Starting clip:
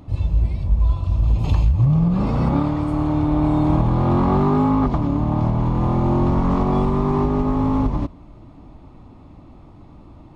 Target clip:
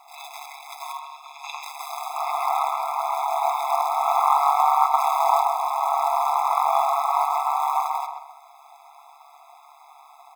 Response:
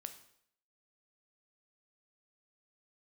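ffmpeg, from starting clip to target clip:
-filter_complex "[0:a]asettb=1/sr,asplit=3[link_01][link_02][link_03];[link_01]atrim=end=0.994[link_04];[link_02]atrim=start=0.99:end=1.63,asetpts=PTS-STARTPTS,afade=type=in:duration=0.004:curve=qsin,afade=type=out:start_time=0.636:duration=0.004:curve=qsin,highpass=1200[link_05];[link_03]atrim=start=1.626[link_06];[link_04][link_05]acrossfade=duration=0.004:curve1=hsin:curve2=qsin[link_07];[link_07][link_06]acrossfade=duration=0.004:curve1=qsin:curve2=hsin,asplit=3[link_08][link_09][link_10];[link_08]afade=type=out:start_time=4.97:duration=0.02[link_11];[link_09]acontrast=64,afade=type=in:start_time=4.97:duration=0.02,afade=type=out:start_time=5.4:duration=0.02[link_12];[link_10]afade=type=in:start_time=5.4:duration=0.02[link_13];[link_11][link_12][link_13]amix=inputs=3:normalize=0,acrusher=bits=7:mode=log:mix=0:aa=0.000001,aeval=exprs='val(0)*sin(2*PI*72*n/s)':channel_layout=same,acrusher=bits=10:mix=0:aa=0.000001,asplit=2[link_14][link_15];[link_15]adelay=132,lowpass=frequency=1900:poles=1,volume=-4.5dB,asplit=2[link_16][link_17];[link_17]adelay=132,lowpass=frequency=1900:poles=1,volume=0.38,asplit=2[link_18][link_19];[link_19]adelay=132,lowpass=frequency=1900:poles=1,volume=0.38,asplit=2[link_20][link_21];[link_21]adelay=132,lowpass=frequency=1900:poles=1,volume=0.38,asplit=2[link_22][link_23];[link_23]adelay=132,lowpass=frequency=1900:poles=1,volume=0.38[link_24];[link_14][link_16][link_18][link_20][link_22][link_24]amix=inputs=6:normalize=0,afftfilt=real='re*eq(mod(floor(b*sr/1024/670),2),1)':imag='im*eq(mod(floor(b*sr/1024/670),2),1)':win_size=1024:overlap=0.75,volume=9dB"

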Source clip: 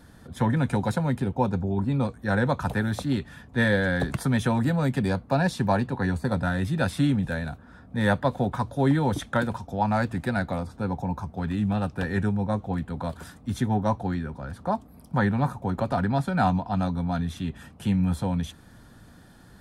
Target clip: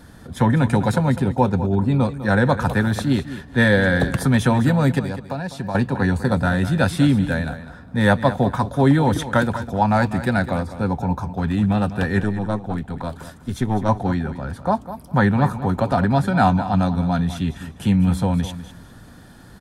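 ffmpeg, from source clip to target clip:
ffmpeg -i in.wav -filter_complex "[0:a]asettb=1/sr,asplit=3[link_01][link_02][link_03];[link_01]atrim=end=4.994[link_04];[link_02]atrim=start=4.99:end=5.75,asetpts=PTS-STARTPTS,afade=type=in:duration=0.004:curve=qsin,afade=type=out:start_time=0.756:duration=0.004:curve=qsin,acompressor=threshold=-33dB:ratio=4[link_05];[link_03]atrim=start=5.746[link_06];[link_04][link_05]acrossfade=duration=0.004:curve1=hsin:curve2=qsin[link_07];[link_07][link_06]acrossfade=duration=0.004:curve1=qsin:curve2=hsin,asettb=1/sr,asplit=3[link_08][link_09][link_10];[link_08]atrim=end=12.204[link_11];[link_09]atrim=start=12.2:end=13.89,asetpts=PTS-STARTPTS,afade=type=in:duration=0.004:curve=qsin,afade=type=out:start_time=1.686:duration=0.004:curve=qsin,aeval=exprs='(tanh(7.08*val(0)+0.7)-tanh(0.7))/7.08':channel_layout=same[link_12];[link_10]atrim=start=13.886[link_13];[link_11][link_12]acrossfade=duration=0.004:curve1=hsin:curve2=qsin[link_14];[link_14][link_13]acrossfade=duration=0.004:curve1=qsin:curve2=hsin,aecho=1:1:202|404:0.224|0.0448,volume=6.5dB" out.wav

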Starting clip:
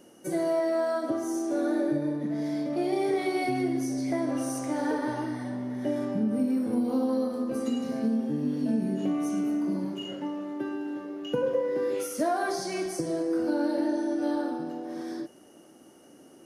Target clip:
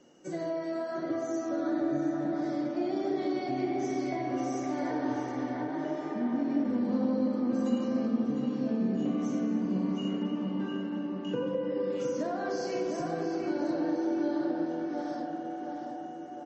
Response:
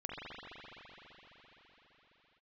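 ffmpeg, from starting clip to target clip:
-filter_complex "[0:a]asplit=2[link_01][link_02];[1:a]atrim=start_sample=2205[link_03];[link_02][link_03]afir=irnorm=-1:irlink=0,volume=-3dB[link_04];[link_01][link_04]amix=inputs=2:normalize=0,asettb=1/sr,asplit=3[link_05][link_06][link_07];[link_05]atrim=end=9.654[link_08];[link_06]atrim=start=9.65:end=10.19,asetpts=PTS-STARTPTS,afade=type=in:duration=0.004:curve=qsin,afade=type=out:start_time=0.536:duration=0.004:curve=qsin,adynamicequalizer=threshold=0.00631:dfrequency=180:dqfactor=3.4:tfrequency=180:tqfactor=3.4:attack=5:release=100:ratio=0.375:range=2:mode=boostabove:tftype=bell[link_09];[link_07]atrim=start=10.186[link_10];[link_08][link_09]acrossfade=duration=0.004:curve1=hsin:curve2=qsin[link_11];[link_11][link_10]acrossfade=duration=0.004:curve1=qsin:curve2=hsin,asplit=2[link_12][link_13];[link_13]adelay=706,lowpass=frequency=2600:poles=1,volume=-4dB,asplit=2[link_14][link_15];[link_15]adelay=706,lowpass=frequency=2600:poles=1,volume=0.54,asplit=2[link_16][link_17];[link_17]adelay=706,lowpass=frequency=2600:poles=1,volume=0.54,asplit=2[link_18][link_19];[link_19]adelay=706,lowpass=frequency=2600:poles=1,volume=0.54,asplit=2[link_20][link_21];[link_21]adelay=706,lowpass=frequency=2600:poles=1,volume=0.54,asplit=2[link_22][link_23];[link_23]adelay=706,lowpass=frequency=2600:poles=1,volume=0.54,asplit=2[link_24][link_25];[link_25]adelay=706,lowpass=frequency=2600:poles=1,volume=0.54[link_26];[link_12][link_14][link_16][link_18][link_20][link_22][link_24][link_26]amix=inputs=8:normalize=0,flanger=delay=7.4:depth=8.8:regen=-68:speed=0.74:shape=sinusoidal,asplit=3[link_27][link_28][link_29];[link_27]afade=type=out:start_time=5.67:duration=0.02[link_30];[link_28]afreqshift=25,afade=type=in:start_time=5.67:duration=0.02,afade=type=out:start_time=6.63:duration=0.02[link_31];[link_29]afade=type=in:start_time=6.63:duration=0.02[link_32];[link_30][link_31][link_32]amix=inputs=3:normalize=0,bandreject=frequency=110.6:width_type=h:width=4,bandreject=frequency=221.2:width_type=h:width=4,bandreject=frequency=331.8:width_type=h:width=4,bandreject=frequency=442.4:width_type=h:width=4,bandreject=frequency=553:width_type=h:width=4,bandreject=frequency=663.6:width_type=h:width=4,bandreject=frequency=774.2:width_type=h:width=4,bandreject=frequency=884.8:width_type=h:width=4,acrossover=split=370[link_33][link_34];[link_34]acompressor=threshold=-29dB:ratio=4[link_35];[link_33][link_35]amix=inputs=2:normalize=0,asplit=3[link_36][link_37][link_38];[link_36]afade=type=out:start_time=2.9:duration=0.02[link_39];[link_37]equalizer=frequency=2300:width=6.7:gain=-9,afade=type=in:start_time=2.9:duration=0.02,afade=type=out:start_time=3.58:duration=0.02[link_40];[link_38]afade=type=in:start_time=3.58:duration=0.02[link_41];[link_39][link_40][link_41]amix=inputs=3:normalize=0,volume=-3dB" -ar 32000 -c:a libmp3lame -b:a 32k

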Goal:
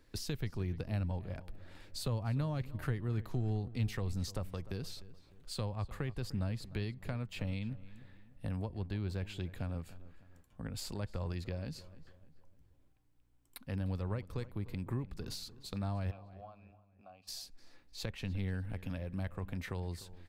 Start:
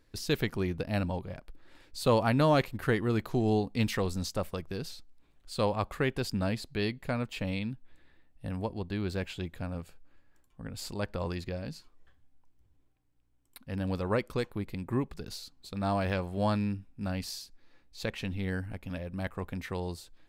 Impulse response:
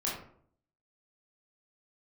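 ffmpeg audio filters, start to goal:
-filter_complex "[0:a]acrossover=split=130[link_01][link_02];[link_02]acompressor=threshold=-41dB:ratio=8[link_03];[link_01][link_03]amix=inputs=2:normalize=0,asplit=3[link_04][link_05][link_06];[link_04]afade=type=out:start_time=16.1:duration=0.02[link_07];[link_05]asplit=3[link_08][link_09][link_10];[link_08]bandpass=frequency=730:width_type=q:width=8,volume=0dB[link_11];[link_09]bandpass=frequency=1090:width_type=q:width=8,volume=-6dB[link_12];[link_10]bandpass=frequency=2440:width_type=q:width=8,volume=-9dB[link_13];[link_11][link_12][link_13]amix=inputs=3:normalize=0,afade=type=in:start_time=16.1:duration=0.02,afade=type=out:start_time=17.27:duration=0.02[link_14];[link_06]afade=type=in:start_time=17.27:duration=0.02[link_15];[link_07][link_14][link_15]amix=inputs=3:normalize=0,asplit=2[link_16][link_17];[link_17]adelay=301,lowpass=frequency=2800:poles=1,volume=-17dB,asplit=2[link_18][link_19];[link_19]adelay=301,lowpass=frequency=2800:poles=1,volume=0.43,asplit=2[link_20][link_21];[link_21]adelay=301,lowpass=frequency=2800:poles=1,volume=0.43,asplit=2[link_22][link_23];[link_23]adelay=301,lowpass=frequency=2800:poles=1,volume=0.43[link_24];[link_18][link_20][link_22][link_24]amix=inputs=4:normalize=0[link_25];[link_16][link_25]amix=inputs=2:normalize=0,volume=1dB"

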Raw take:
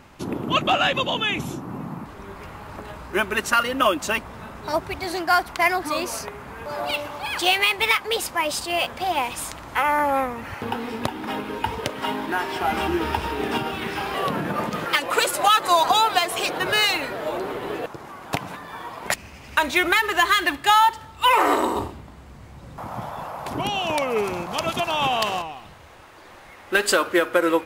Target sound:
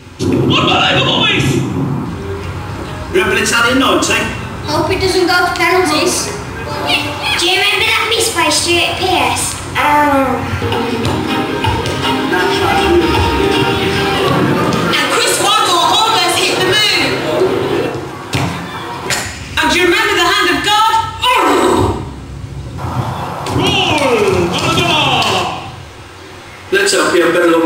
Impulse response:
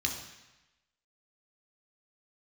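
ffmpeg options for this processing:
-filter_complex "[0:a]asplit=2[link_01][link_02];[link_02]asoftclip=type=tanh:threshold=-13.5dB,volume=-9dB[link_03];[link_01][link_03]amix=inputs=2:normalize=0[link_04];[1:a]atrim=start_sample=2205,asetrate=57330,aresample=44100[link_05];[link_04][link_05]afir=irnorm=-1:irlink=0,alimiter=level_in=9.5dB:limit=-1dB:release=50:level=0:latency=1,volume=-1dB"

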